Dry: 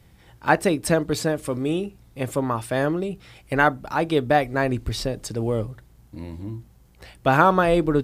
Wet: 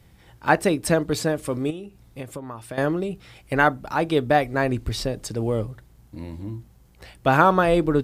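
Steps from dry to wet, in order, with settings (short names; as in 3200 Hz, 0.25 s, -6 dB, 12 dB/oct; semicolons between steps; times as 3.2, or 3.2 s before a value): 1.7–2.78 compressor 16:1, threshold -31 dBFS, peak gain reduction 13.5 dB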